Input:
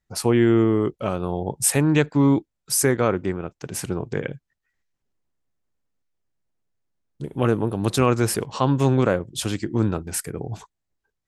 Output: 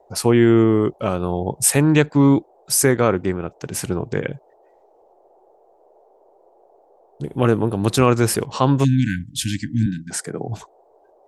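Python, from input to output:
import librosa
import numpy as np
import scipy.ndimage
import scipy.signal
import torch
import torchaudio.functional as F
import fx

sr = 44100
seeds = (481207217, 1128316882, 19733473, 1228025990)

y = fx.cabinet(x, sr, low_hz=140.0, low_slope=24, high_hz=8900.0, hz=(710.0, 1500.0, 2600.0), db=(5, 3, -8), at=(9.86, 10.48))
y = fx.dmg_noise_band(y, sr, seeds[0], low_hz=360.0, high_hz=820.0, level_db=-58.0)
y = fx.spec_erase(y, sr, start_s=8.84, length_s=1.27, low_hz=320.0, high_hz=1500.0)
y = y * 10.0 ** (3.5 / 20.0)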